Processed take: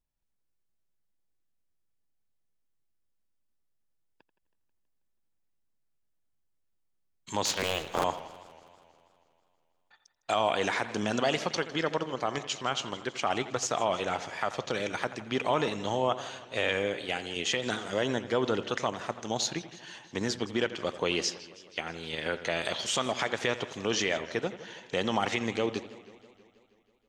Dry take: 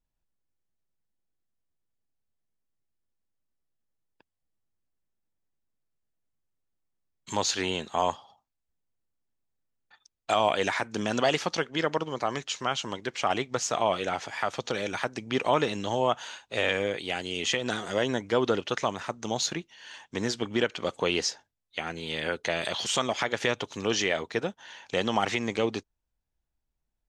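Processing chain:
0:07.45–0:08.05: sub-harmonics by changed cycles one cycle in 3, inverted
in parallel at −1 dB: output level in coarse steps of 16 dB
on the sum: bucket-brigade delay 86 ms, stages 2,048, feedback 47%, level −14.5 dB
feedback echo with a swinging delay time 161 ms, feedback 66%, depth 175 cents, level −19 dB
level −5.5 dB

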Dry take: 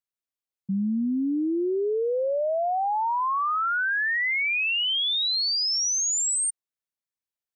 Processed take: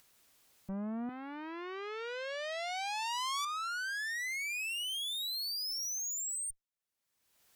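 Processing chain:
upward compression, threshold −37 dBFS
tube saturation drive 34 dB, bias 0.6
0:01.09–0:03.45: spectral tilt +4.5 dB per octave
level −2.5 dB

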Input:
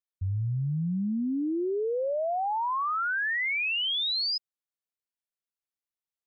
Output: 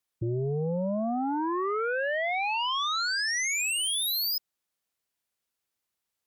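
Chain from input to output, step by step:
frequency shifter +22 Hz
sine wavefolder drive 6 dB, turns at −25 dBFS

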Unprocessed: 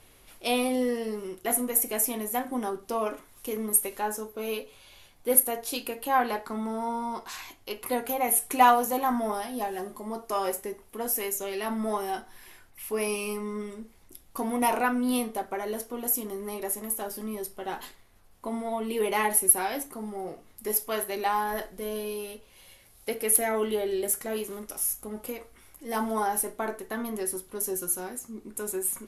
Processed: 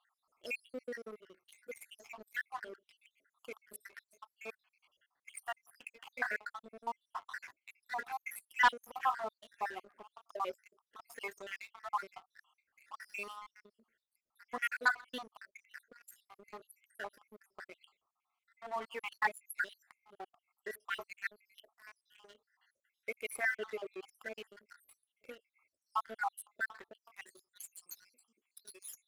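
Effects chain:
time-frequency cells dropped at random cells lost 76%
band-pass filter sweep 1,600 Hz → 3,900 Hz, 0:26.80–0:27.73
leveller curve on the samples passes 2
level −1 dB

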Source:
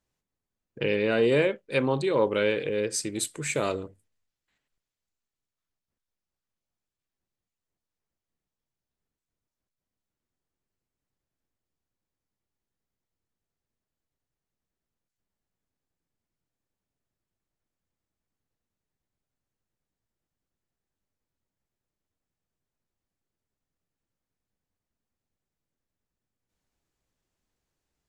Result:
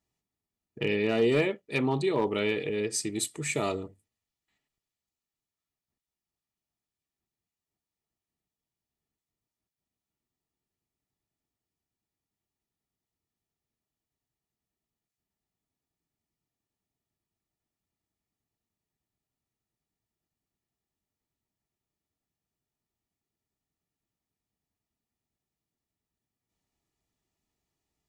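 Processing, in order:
notch filter 1,500 Hz, Q 5.8
notch comb filter 530 Hz
gain into a clipping stage and back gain 16.5 dB

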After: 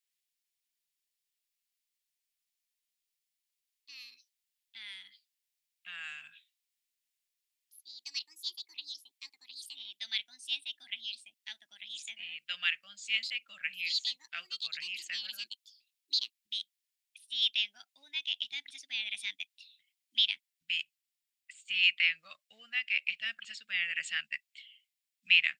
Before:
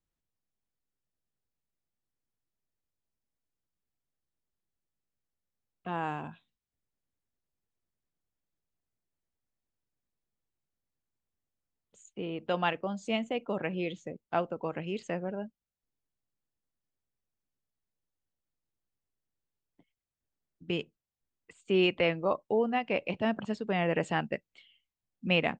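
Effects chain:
inverse Chebyshev high-pass filter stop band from 1,000 Hz, stop band 40 dB
notch filter 6,200 Hz, Q 14
delay with pitch and tempo change per echo 95 ms, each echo +4 semitones, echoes 2
level +7 dB

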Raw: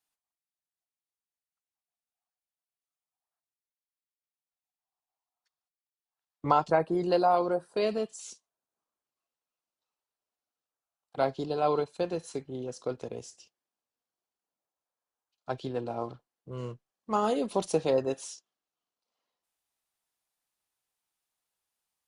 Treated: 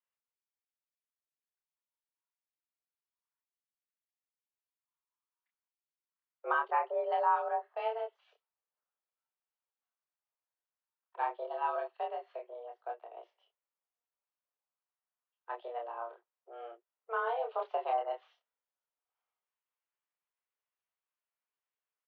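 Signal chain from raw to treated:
double-tracking delay 28 ms −3 dB
single-sideband voice off tune +230 Hz 160–2,800 Hz
0:12.54–0:13.17: expander for the loud parts 1.5 to 1, over −43 dBFS
level −8 dB

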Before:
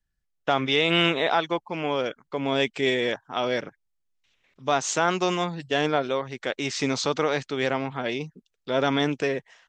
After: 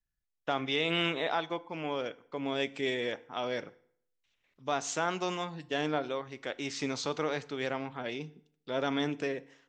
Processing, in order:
feedback delay network reverb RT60 0.63 s, low-frequency decay 1×, high-frequency decay 0.8×, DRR 15 dB
level −8.5 dB

